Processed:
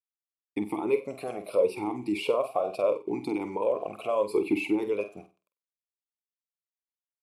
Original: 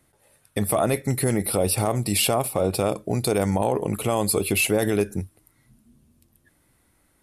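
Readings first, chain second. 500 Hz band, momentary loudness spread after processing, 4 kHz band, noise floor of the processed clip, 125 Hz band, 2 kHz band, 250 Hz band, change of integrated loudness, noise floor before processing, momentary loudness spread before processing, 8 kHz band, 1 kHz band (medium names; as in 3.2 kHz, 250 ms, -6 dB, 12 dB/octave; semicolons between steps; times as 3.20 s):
-3.0 dB, 7 LU, -14.0 dB, under -85 dBFS, -22.0 dB, -9.0 dB, -5.0 dB, -6.0 dB, -65 dBFS, 5 LU, under -25 dB, -6.5 dB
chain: expander -52 dBFS; harmonic-percussive split percussive +7 dB; small samples zeroed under -38 dBFS; flutter echo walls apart 8.2 m, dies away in 0.29 s; talking filter a-u 0.76 Hz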